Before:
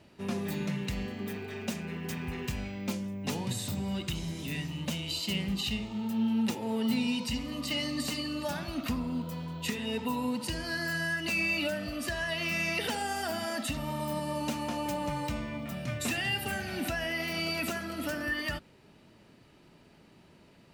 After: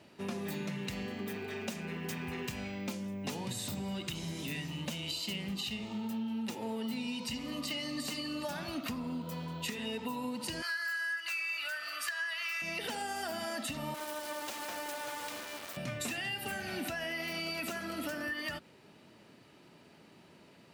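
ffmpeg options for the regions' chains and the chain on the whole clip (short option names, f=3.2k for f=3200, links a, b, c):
-filter_complex "[0:a]asettb=1/sr,asplit=3[a][b][c];[a]atrim=end=10.624[d];[b]atrim=start=10.62:end=12.62,asetpts=PTS-STARTPTS,afade=t=in:d=0.004:c=qsin,afade=t=out:st=1.996:d=0.004:c=qsin,highpass=f=1.4k:t=q:w=2.6,highshelf=f=12k:g=4.5,aeval=exprs='val(0)+0.00398*sin(2*PI*4700*n/s)':c=same[e];[c]atrim=start=12.616[f];[d][e]acrossfade=d=0.004:c1=hsin:c2=qsin[g];[g][f]acrossfade=d=0.004:c1=qsin:c2=hsin,asettb=1/sr,asplit=3[h][i][j];[h]atrim=end=13.944[k];[i]atrim=start=13.94:end=15.77,asetpts=PTS-STARTPTS,afade=t=in:d=0.004:c=qsin,afade=t=out:st=1.826:d=0.004:c=qsin,highpass=f=360:w=0.5412,highpass=f=360:w=1.3066,acrusher=bits=4:dc=4:mix=0:aa=0.000001[l];[j]atrim=start=15.766[m];[k][l]acrossfade=d=0.004:c1=hsin:c2=qsin[n];[n][m]acrossfade=d=0.004:c1=qsin:c2=hsin,highpass=83,lowshelf=f=150:g=-7,acompressor=threshold=-36dB:ratio=6,volume=1.5dB"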